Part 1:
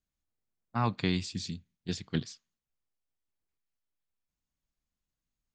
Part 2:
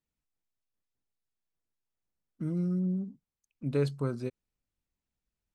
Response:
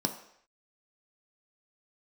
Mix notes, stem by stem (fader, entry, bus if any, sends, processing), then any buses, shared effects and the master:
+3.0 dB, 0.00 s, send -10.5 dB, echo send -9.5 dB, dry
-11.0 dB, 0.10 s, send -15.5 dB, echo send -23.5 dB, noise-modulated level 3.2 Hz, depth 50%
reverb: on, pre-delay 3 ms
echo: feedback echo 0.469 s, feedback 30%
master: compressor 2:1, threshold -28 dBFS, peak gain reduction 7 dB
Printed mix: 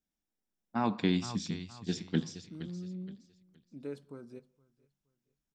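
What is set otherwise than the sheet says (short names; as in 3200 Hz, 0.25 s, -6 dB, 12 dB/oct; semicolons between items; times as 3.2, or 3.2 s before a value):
stem 1 +3.0 dB -> -4.0 dB; master: missing compressor 2:1, threshold -28 dBFS, peak gain reduction 7 dB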